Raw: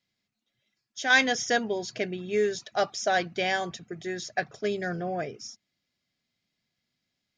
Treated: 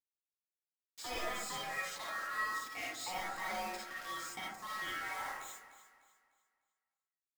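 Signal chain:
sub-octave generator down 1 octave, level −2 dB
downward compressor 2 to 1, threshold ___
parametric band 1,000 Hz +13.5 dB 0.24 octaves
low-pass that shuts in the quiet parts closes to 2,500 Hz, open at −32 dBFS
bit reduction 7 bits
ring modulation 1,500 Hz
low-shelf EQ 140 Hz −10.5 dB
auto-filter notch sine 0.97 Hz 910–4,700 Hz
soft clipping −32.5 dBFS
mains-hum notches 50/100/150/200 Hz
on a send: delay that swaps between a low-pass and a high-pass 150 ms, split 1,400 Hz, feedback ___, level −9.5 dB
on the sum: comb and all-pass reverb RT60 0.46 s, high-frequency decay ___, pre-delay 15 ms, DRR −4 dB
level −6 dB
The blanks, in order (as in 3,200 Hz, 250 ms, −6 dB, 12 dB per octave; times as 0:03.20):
−33 dBFS, 60%, 0.35×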